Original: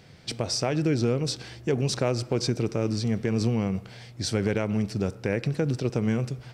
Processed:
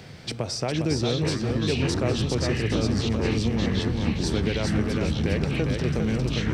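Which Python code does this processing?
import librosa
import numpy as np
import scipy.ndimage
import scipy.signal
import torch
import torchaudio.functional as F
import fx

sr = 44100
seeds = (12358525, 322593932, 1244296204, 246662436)

p1 = x + fx.echo_feedback(x, sr, ms=404, feedback_pct=35, wet_db=-4, dry=0)
p2 = fx.echo_pitch(p1, sr, ms=342, semitones=-6, count=3, db_per_echo=-3.0)
p3 = fx.band_squash(p2, sr, depth_pct=40)
y = F.gain(torch.from_numpy(p3), -2.0).numpy()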